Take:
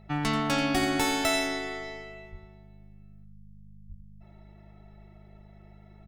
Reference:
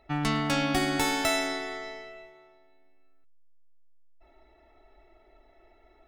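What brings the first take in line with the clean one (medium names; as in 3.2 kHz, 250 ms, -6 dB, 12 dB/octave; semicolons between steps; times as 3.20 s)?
clip repair -16.5 dBFS; de-hum 51 Hz, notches 4; de-plosive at 0.78/2.31/3.88 s; inverse comb 86 ms -12 dB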